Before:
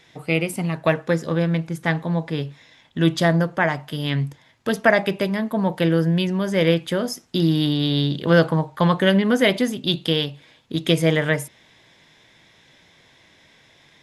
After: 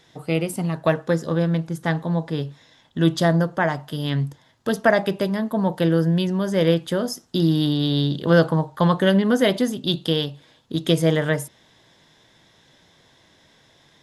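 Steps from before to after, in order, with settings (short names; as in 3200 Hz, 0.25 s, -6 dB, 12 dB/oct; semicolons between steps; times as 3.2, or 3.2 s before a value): bell 2300 Hz -9 dB 0.58 oct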